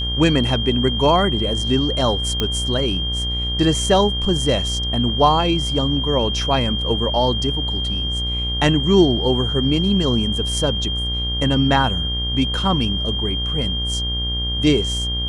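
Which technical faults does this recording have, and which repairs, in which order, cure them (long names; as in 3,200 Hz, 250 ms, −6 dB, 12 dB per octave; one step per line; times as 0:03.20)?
mains buzz 60 Hz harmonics 33 −25 dBFS
whistle 3,200 Hz −23 dBFS
0:02.40: click −6 dBFS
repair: click removal
hum removal 60 Hz, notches 33
notch filter 3,200 Hz, Q 30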